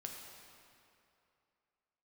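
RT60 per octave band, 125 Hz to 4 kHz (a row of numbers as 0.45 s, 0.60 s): 2.5 s, 2.5 s, 2.7 s, 2.7 s, 2.4 s, 2.0 s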